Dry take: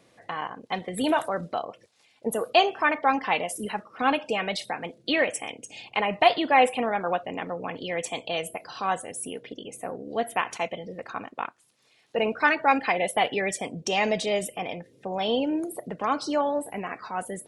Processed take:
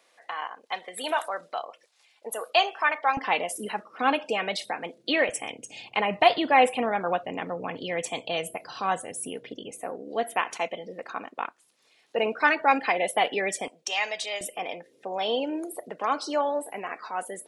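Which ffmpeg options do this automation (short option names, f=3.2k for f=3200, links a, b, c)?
-af "asetnsamples=n=441:p=0,asendcmd='3.17 highpass f 230;5.29 highpass f 89;9.71 highpass f 250;13.68 highpass f 1000;14.41 highpass f 360',highpass=700"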